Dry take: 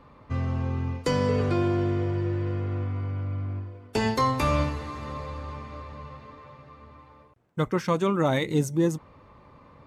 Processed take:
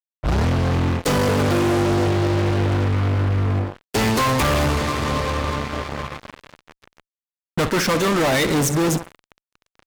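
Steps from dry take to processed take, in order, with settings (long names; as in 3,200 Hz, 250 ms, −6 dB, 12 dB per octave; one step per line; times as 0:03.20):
turntable start at the beginning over 0.48 s
repeating echo 63 ms, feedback 59%, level −17.5 dB
harmonic and percussive parts rebalanced percussive +8 dB
fuzz pedal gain 35 dB, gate −38 dBFS
level −3.5 dB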